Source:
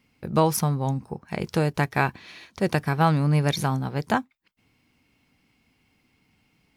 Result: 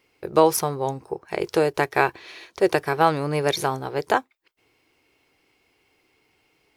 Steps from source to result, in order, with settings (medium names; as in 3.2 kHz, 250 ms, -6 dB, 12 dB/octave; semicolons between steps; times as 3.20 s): resonant low shelf 290 Hz -8.5 dB, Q 3; trim +2.5 dB